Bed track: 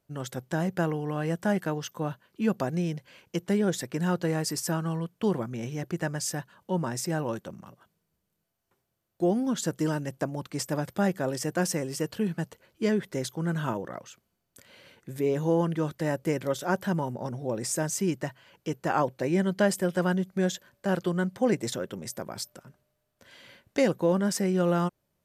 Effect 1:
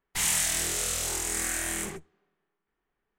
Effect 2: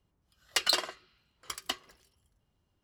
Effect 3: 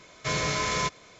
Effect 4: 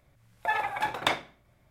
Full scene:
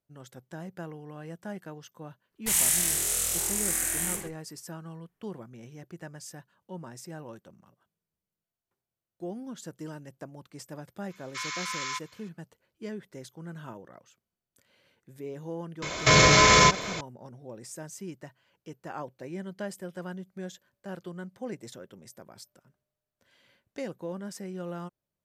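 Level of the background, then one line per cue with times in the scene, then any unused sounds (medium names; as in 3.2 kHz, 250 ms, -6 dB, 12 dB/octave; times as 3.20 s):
bed track -12.5 dB
2.31 s: add 1 -3.5 dB + peaking EQ 12 kHz +11 dB 0.95 oct
11.10 s: add 3 -5 dB + steep high-pass 980 Hz 72 dB/octave
15.82 s: add 3 -7.5 dB + loudness maximiser +25 dB
not used: 2, 4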